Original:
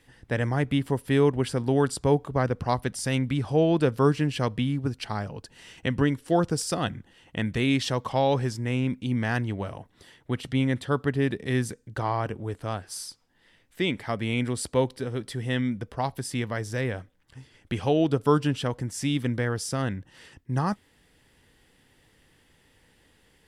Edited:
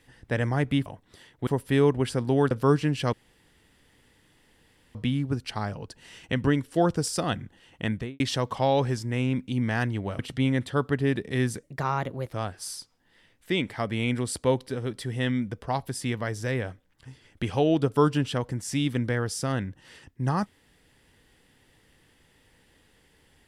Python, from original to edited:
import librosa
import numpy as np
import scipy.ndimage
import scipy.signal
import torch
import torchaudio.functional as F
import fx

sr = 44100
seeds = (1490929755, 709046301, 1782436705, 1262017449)

y = fx.studio_fade_out(x, sr, start_s=7.43, length_s=0.31)
y = fx.edit(y, sr, fx.cut(start_s=1.9, length_s=1.97),
    fx.insert_room_tone(at_s=4.49, length_s=1.82),
    fx.move(start_s=9.73, length_s=0.61, to_s=0.86),
    fx.speed_span(start_s=11.78, length_s=0.84, speed=1.21), tone=tone)